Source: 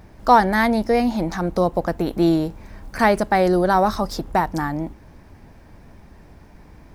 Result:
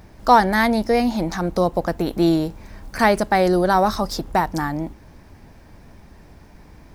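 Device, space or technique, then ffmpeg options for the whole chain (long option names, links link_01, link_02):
presence and air boost: -af "equalizer=frequency=4900:width_type=o:width=1.7:gain=3,highshelf=frequency=10000:gain=4"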